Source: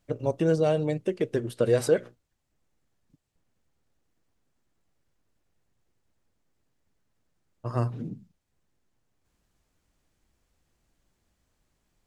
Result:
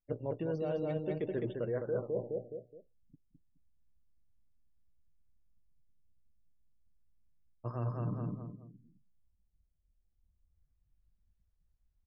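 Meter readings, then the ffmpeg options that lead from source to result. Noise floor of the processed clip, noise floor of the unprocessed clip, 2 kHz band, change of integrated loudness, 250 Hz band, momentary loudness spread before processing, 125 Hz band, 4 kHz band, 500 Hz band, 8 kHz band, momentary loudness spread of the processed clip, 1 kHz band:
−76 dBFS, −77 dBFS, −12.0 dB, −10.5 dB, −8.5 dB, 15 LU, −7.0 dB, below −15 dB, −9.5 dB, below −30 dB, 11 LU, −9.0 dB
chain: -filter_complex "[0:a]asplit=2[link_01][link_02];[link_02]alimiter=limit=-19dB:level=0:latency=1:release=21,volume=2dB[link_03];[link_01][link_03]amix=inputs=2:normalize=0,highshelf=frequency=4300:gain=-5.5,aecho=1:1:210|420|630|840:0.631|0.221|0.0773|0.0271,areverse,acompressor=threshold=-27dB:ratio=6,areverse,afftdn=noise_reduction=24:noise_floor=-52,afftfilt=real='re*lt(b*sr/1024,740*pow(7400/740,0.5+0.5*sin(2*PI*0.28*pts/sr)))':imag='im*lt(b*sr/1024,740*pow(7400/740,0.5+0.5*sin(2*PI*0.28*pts/sr)))':win_size=1024:overlap=0.75,volume=-5.5dB"

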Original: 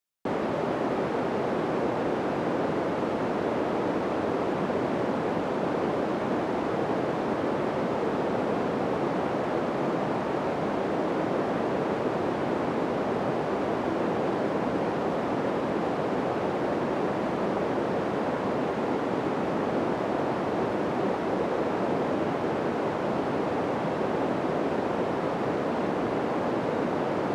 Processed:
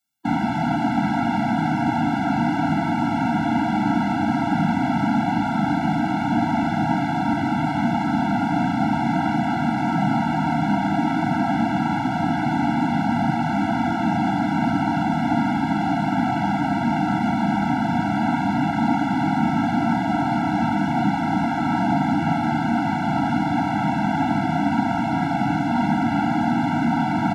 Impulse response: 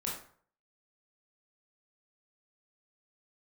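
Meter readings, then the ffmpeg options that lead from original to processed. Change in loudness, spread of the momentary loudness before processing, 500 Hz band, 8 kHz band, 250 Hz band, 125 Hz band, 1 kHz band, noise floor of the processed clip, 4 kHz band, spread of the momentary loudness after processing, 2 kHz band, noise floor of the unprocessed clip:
+6.5 dB, 1 LU, −4.0 dB, can't be measured, +9.5 dB, +11.0 dB, +8.5 dB, −24 dBFS, +7.0 dB, 1 LU, +8.0 dB, −30 dBFS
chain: -filter_complex "[0:a]highpass=64,asplit=2[link_01][link_02];[link_02]adelay=39,volume=-12dB[link_03];[link_01][link_03]amix=inputs=2:normalize=0,asplit=2[link_04][link_05];[1:a]atrim=start_sample=2205[link_06];[link_05][link_06]afir=irnorm=-1:irlink=0,volume=-6.5dB[link_07];[link_04][link_07]amix=inputs=2:normalize=0,afftfilt=real='re*eq(mod(floor(b*sr/1024/330),2),0)':imag='im*eq(mod(floor(b*sr/1024/330),2),0)':win_size=1024:overlap=0.75,volume=7dB"

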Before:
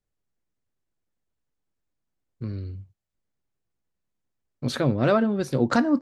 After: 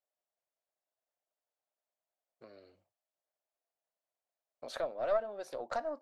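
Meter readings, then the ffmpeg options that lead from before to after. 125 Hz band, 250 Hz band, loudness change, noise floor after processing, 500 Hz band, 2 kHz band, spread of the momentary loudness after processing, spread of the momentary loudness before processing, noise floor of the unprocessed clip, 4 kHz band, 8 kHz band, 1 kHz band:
−37.5 dB, −30.5 dB, −12.5 dB, below −85 dBFS, −9.0 dB, −15.5 dB, 12 LU, 16 LU, −81 dBFS, −15.0 dB, −14.5 dB, −10.5 dB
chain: -af "acompressor=threshold=-31dB:ratio=3,highpass=frequency=640:width_type=q:width=4.8,aeval=exprs='1.5*(cos(1*acos(clip(val(0)/1.5,-1,1)))-cos(1*PI/2))+0.335*(cos(4*acos(clip(val(0)/1.5,-1,1)))-cos(4*PI/2))+0.0668*(cos(7*acos(clip(val(0)/1.5,-1,1)))-cos(7*PI/2))':channel_layout=same,volume=-5dB"

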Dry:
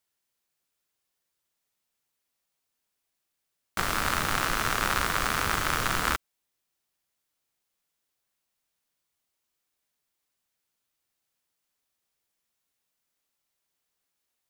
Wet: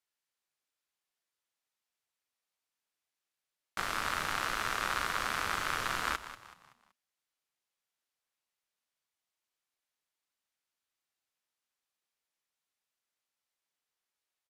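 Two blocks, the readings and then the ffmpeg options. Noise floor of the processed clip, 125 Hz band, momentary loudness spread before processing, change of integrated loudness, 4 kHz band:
below −85 dBFS, −13.0 dB, 4 LU, −6.5 dB, −6.0 dB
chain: -filter_complex "[0:a]asplit=5[link_01][link_02][link_03][link_04][link_05];[link_02]adelay=189,afreqshift=-62,volume=-14dB[link_06];[link_03]adelay=378,afreqshift=-124,volume=-22dB[link_07];[link_04]adelay=567,afreqshift=-186,volume=-29.9dB[link_08];[link_05]adelay=756,afreqshift=-248,volume=-37.9dB[link_09];[link_01][link_06][link_07][link_08][link_09]amix=inputs=5:normalize=0,aresample=32000,aresample=44100,asplit=2[link_10][link_11];[link_11]highpass=frequency=720:poles=1,volume=7dB,asoftclip=type=tanh:threshold=-7dB[link_12];[link_10][link_12]amix=inputs=2:normalize=0,lowpass=frequency=5200:poles=1,volume=-6dB,volume=-8dB"

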